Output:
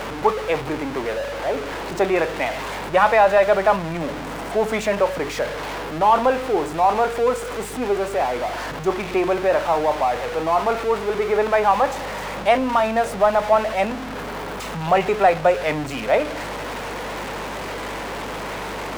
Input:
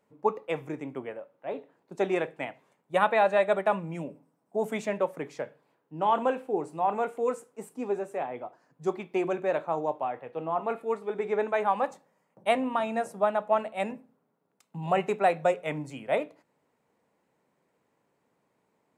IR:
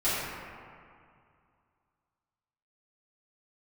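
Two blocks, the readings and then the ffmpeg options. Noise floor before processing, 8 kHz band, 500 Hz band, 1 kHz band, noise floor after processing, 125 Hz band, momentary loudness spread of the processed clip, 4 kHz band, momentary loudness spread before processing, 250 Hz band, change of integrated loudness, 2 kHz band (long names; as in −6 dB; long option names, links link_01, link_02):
−75 dBFS, can't be measured, +9.0 dB, +10.0 dB, −30 dBFS, +9.0 dB, 12 LU, +14.0 dB, 14 LU, +8.0 dB, +8.0 dB, +11.0 dB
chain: -filter_complex "[0:a]aeval=exprs='val(0)+0.5*0.0299*sgn(val(0))':channel_layout=same,asplit=2[link_01][link_02];[link_02]highpass=frequency=720:poles=1,volume=9dB,asoftclip=type=tanh:threshold=-9.5dB[link_03];[link_01][link_03]amix=inputs=2:normalize=0,lowpass=frequency=2400:poles=1,volume=-6dB,aeval=exprs='val(0)+0.00501*(sin(2*PI*50*n/s)+sin(2*PI*2*50*n/s)/2+sin(2*PI*3*50*n/s)/3+sin(2*PI*4*50*n/s)/4+sin(2*PI*5*50*n/s)/5)':channel_layout=same,volume=6dB"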